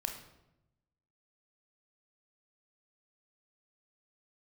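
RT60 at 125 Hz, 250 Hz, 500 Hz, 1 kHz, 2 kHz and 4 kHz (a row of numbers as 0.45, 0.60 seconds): 1.3, 1.2, 0.95, 0.80, 0.70, 0.60 seconds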